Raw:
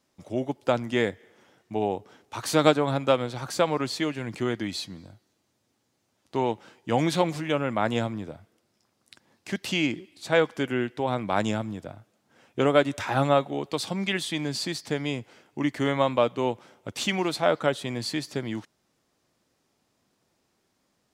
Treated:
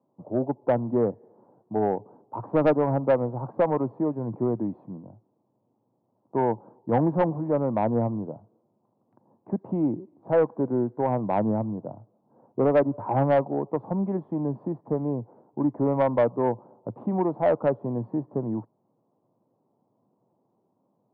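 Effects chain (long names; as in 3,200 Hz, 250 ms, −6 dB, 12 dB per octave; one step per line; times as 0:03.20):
Chebyshev band-pass filter 110–990 Hz, order 4
soft clipping −17 dBFS, distortion −14 dB
level +4 dB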